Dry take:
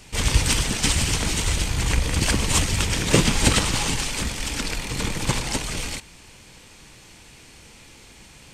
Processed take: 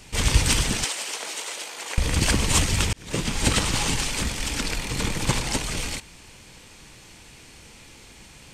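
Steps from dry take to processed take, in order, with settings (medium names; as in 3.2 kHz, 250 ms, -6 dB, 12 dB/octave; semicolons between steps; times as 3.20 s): 0.84–1.98 s: ladder high-pass 400 Hz, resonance 25%; 2.93–4.07 s: fade in equal-power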